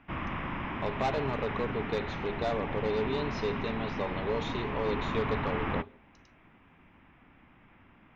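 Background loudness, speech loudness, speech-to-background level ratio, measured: -35.5 LUFS, -34.5 LUFS, 1.0 dB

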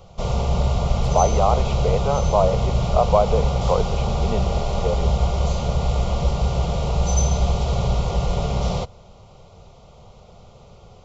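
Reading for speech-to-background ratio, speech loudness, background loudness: -1.0 dB, -23.5 LUFS, -22.5 LUFS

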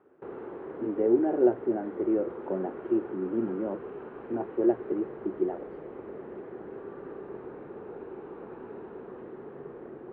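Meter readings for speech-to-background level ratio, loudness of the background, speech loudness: 12.5 dB, -42.0 LUFS, -29.5 LUFS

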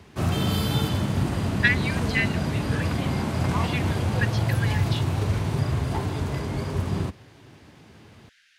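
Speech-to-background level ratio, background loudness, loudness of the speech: -3.5 dB, -26.0 LUFS, -29.5 LUFS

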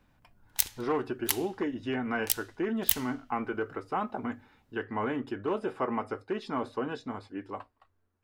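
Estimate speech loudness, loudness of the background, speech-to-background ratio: -34.0 LUFS, -31.5 LUFS, -2.5 dB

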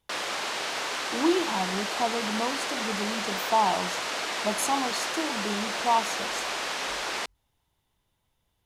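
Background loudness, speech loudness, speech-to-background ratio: -30.0 LUFS, -29.5 LUFS, 0.5 dB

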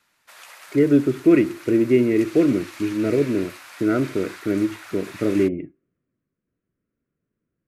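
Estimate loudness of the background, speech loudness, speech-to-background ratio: -40.5 LUFS, -21.0 LUFS, 19.5 dB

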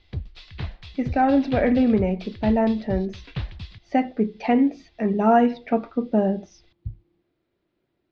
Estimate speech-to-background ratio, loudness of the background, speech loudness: 13.5 dB, -36.0 LUFS, -22.5 LUFS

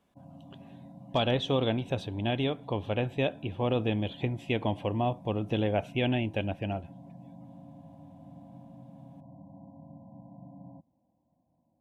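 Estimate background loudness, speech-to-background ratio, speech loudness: -50.0 LUFS, 19.5 dB, -30.5 LUFS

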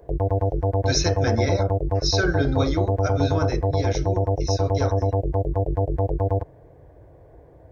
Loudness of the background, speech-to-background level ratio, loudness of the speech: -24.0 LUFS, -3.5 dB, -27.5 LUFS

